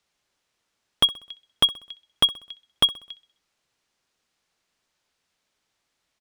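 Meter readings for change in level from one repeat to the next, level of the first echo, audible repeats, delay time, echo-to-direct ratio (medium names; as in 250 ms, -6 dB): -7.0 dB, -19.0 dB, 3, 64 ms, -18.0 dB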